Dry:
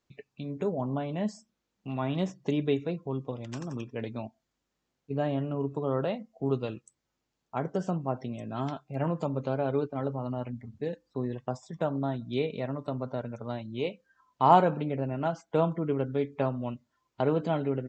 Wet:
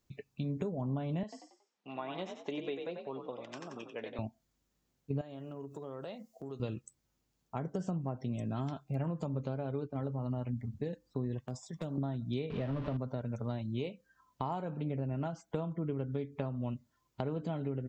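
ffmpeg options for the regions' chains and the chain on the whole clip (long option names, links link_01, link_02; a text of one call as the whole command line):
ffmpeg -i in.wav -filter_complex "[0:a]asettb=1/sr,asplit=3[link_01][link_02][link_03];[link_01]atrim=end=1.234[link_04];[link_02]atrim=start=1.23:end=4.19,asetpts=PTS-STARTPTS,afade=type=in:duration=0.004:curve=qsin,afade=type=out:start_time=2.956:duration=0.004:curve=qsin,highpass=520,lowpass=3900,asplit=5[link_05][link_06][link_07][link_08][link_09];[link_06]adelay=92,afreqshift=47,volume=-7dB[link_10];[link_07]adelay=184,afreqshift=94,volume=-15.6dB[link_11];[link_08]adelay=276,afreqshift=141,volume=-24.3dB[link_12];[link_09]adelay=368,afreqshift=188,volume=-32.9dB[link_13];[link_05][link_10][link_11][link_12][link_13]amix=inputs=5:normalize=0,atrim=end_sample=130536[link_14];[link_03]atrim=start=4.186[link_15];[link_04][link_14]acrossfade=duration=0.004:curve1=hsin:curve2=qsin[link_16];[link_16][link_15]acrossfade=duration=0.004:curve1=qsin:curve2=hsin,asettb=1/sr,asplit=3[link_17][link_18][link_19];[link_17]atrim=end=5.214[link_20];[link_18]atrim=start=5.21:end=6.6,asetpts=PTS-STARTPTS,afade=type=in:duration=0.004:curve=qsin,afade=type=out:start_time=1.386:duration=0.004:curve=qsin,acompressor=threshold=-40dB:ratio=3:attack=3.2:release=140:knee=1:detection=peak,bass=frequency=250:gain=-11,treble=frequency=4000:gain=10[link_21];[link_19]atrim=start=6.596[link_22];[link_20][link_21]acrossfade=duration=0.004:curve1=hsin:curve2=qsin[link_23];[link_23][link_22]acrossfade=duration=0.004:curve1=qsin:curve2=hsin,asettb=1/sr,asplit=3[link_24][link_25][link_26];[link_24]atrim=end=11.394[link_27];[link_25]atrim=start=11.39:end=11.98,asetpts=PTS-STARTPTS,afade=type=in:duration=0.004:curve=qsin,afade=type=out:start_time=0.586:duration=0.004:curve=qsin,lowshelf=frequency=350:gain=-9,acrossover=split=430|3000[link_28][link_29][link_30];[link_29]acompressor=threshold=-45dB:ratio=8:attack=3.2:release=140:knee=2.83:detection=peak[link_31];[link_28][link_31][link_30]amix=inputs=3:normalize=0,aeval=exprs='0.0376*(abs(mod(val(0)/0.0376+3,4)-2)-1)':channel_layout=same[link_32];[link_26]atrim=start=11.976[link_33];[link_27][link_32]acrossfade=duration=0.004:curve1=hsin:curve2=qsin[link_34];[link_34][link_33]acrossfade=duration=0.004:curve1=qsin:curve2=hsin,asettb=1/sr,asplit=3[link_35][link_36][link_37];[link_35]atrim=end=12.504[link_38];[link_36]atrim=start=12.5:end=12.97,asetpts=PTS-STARTPTS,afade=type=in:duration=0.004:curve=qsin,afade=type=out:start_time=0.466:duration=0.004:curve=qsin,aeval=exprs='val(0)+0.5*0.0211*sgn(val(0))':channel_layout=same,lowpass=frequency=3300:width=0.5412,lowpass=frequency=3300:width=1.3066,equalizer=frequency=2200:width=4.3:gain=-3.5[link_39];[link_37]atrim=start=12.966[link_40];[link_38][link_39]acrossfade=duration=0.004:curve1=hsin:curve2=qsin[link_41];[link_41][link_40]acrossfade=duration=0.004:curve1=qsin:curve2=hsin,highshelf=frequency=6800:gain=11.5,acompressor=threshold=-34dB:ratio=5,lowshelf=frequency=230:gain=11,volume=-3dB" out.wav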